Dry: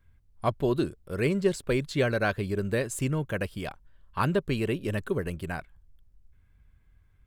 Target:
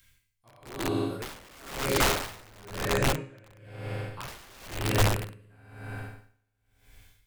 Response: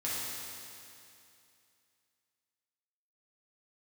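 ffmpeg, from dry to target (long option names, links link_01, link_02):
-filter_complex "[0:a]asettb=1/sr,asplit=3[link_01][link_02][link_03];[link_01]atrim=end=2.724[link_04];[link_02]atrim=start=2.72:end=3.54,asetpts=PTS-STARTPTS,afade=type=in:duration=0.004:curve=qsin,afade=type=out:start_time=0.816:duration=0.004:curve=qsin,lowpass=3400[link_05];[link_03]atrim=start=3.536[link_06];[link_04][link_05]acrossfade=duration=0.004:curve1=hsin:curve2=qsin[link_07];[link_07][link_06]acrossfade=duration=0.004:curve1=qsin:curve2=hsin,acrossover=split=690|2600[link_08][link_09][link_10];[link_10]acompressor=mode=upward:threshold=-47dB:ratio=2.5[link_11];[link_08][link_09][link_11]amix=inputs=3:normalize=0,asplit=3[link_12][link_13][link_14];[link_12]afade=type=out:start_time=1.19:duration=0.02[link_15];[link_13]equalizer=frequency=530:width_type=o:width=1.8:gain=8,afade=type=in:start_time=1.19:duration=0.02,afade=type=out:start_time=1.66:duration=0.02[link_16];[link_14]afade=type=in:start_time=1.66:duration=0.02[link_17];[link_15][link_16][link_17]amix=inputs=3:normalize=0[link_18];[1:a]atrim=start_sample=2205,asetrate=48510,aresample=44100[link_19];[link_18][link_19]afir=irnorm=-1:irlink=0,asettb=1/sr,asplit=3[link_20][link_21][link_22];[link_20]atrim=end=4.284[link_23];[link_21]atrim=start=4.28:end=4.68,asetpts=PTS-STARTPTS,afade=type=in:duration=0.004:curve=qsin,afade=type=out:start_time=0.396:duration=0.004:curve=qsin,acontrast=67[link_24];[link_22]atrim=start=4.676[link_25];[link_23][link_24]acrossfade=duration=0.004:curve1=hsin:curve2=qsin[link_26];[link_26][link_25]acrossfade=duration=0.004:curve1=qsin:curve2=hsin,aeval=exprs='(mod(6.68*val(0)+1,2)-1)/6.68':channel_layout=same,asubboost=boost=3:cutoff=92,aeval=exprs='val(0)*pow(10,-31*(0.5-0.5*cos(2*PI*1*n/s))/20)':channel_layout=same"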